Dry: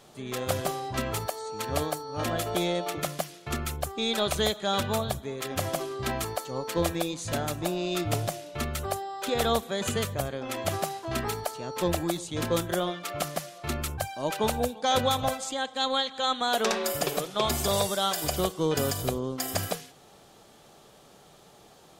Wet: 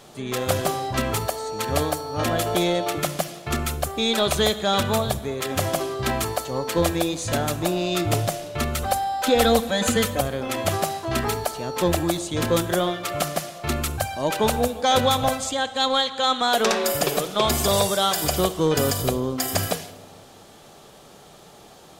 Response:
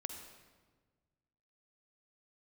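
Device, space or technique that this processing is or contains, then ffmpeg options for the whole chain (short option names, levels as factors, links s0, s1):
saturated reverb return: -filter_complex "[0:a]asettb=1/sr,asplit=3[s0][s1][s2];[s0]atrim=end=8.824[s3];[s1]atrim=start=8.82:end=10.21,asetpts=PTS-STARTPTS,afade=t=in:d=0.004:c=qsin,afade=t=out:st=1.386:d=0.004:c=qsin,aecho=1:1:3.9:0.86,atrim=end_sample=61299[s4];[s2]atrim=start=10.206[s5];[s3][s4]acrossfade=d=0.004:c1=hsin:c2=qsin[s6];[s6][s5]acrossfade=d=0.004:c1=qsin:c2=hsin,asplit=2[s7][s8];[1:a]atrim=start_sample=2205[s9];[s8][s9]afir=irnorm=-1:irlink=0,asoftclip=type=tanh:threshold=0.0473,volume=0.631[s10];[s7][s10]amix=inputs=2:normalize=0,volume=1.5"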